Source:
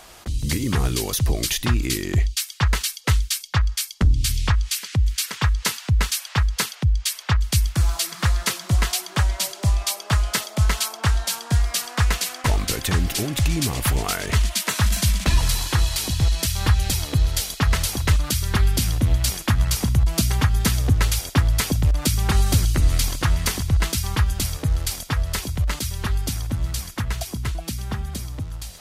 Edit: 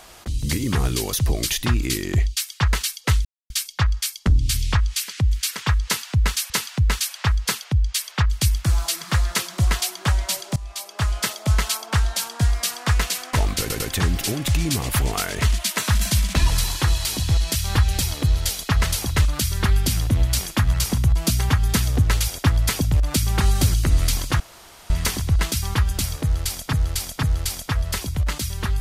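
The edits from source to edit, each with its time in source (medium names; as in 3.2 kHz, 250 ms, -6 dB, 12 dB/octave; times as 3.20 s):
3.25 s: insert silence 0.25 s
5.61–6.25 s: loop, 2 plays
9.67–10.62 s: fade in equal-power, from -20 dB
12.71 s: stutter 0.10 s, 3 plays
23.31 s: insert room tone 0.50 s
24.64–25.14 s: loop, 3 plays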